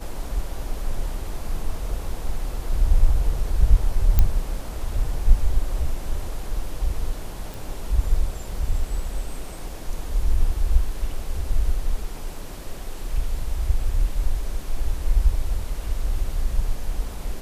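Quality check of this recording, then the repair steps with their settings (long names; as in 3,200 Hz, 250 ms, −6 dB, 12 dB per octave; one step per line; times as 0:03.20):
0:04.19: click −5 dBFS
0:07.54: click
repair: click removal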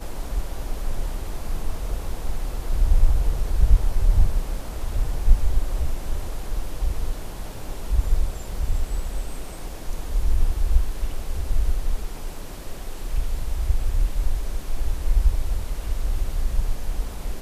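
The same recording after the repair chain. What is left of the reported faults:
none of them is left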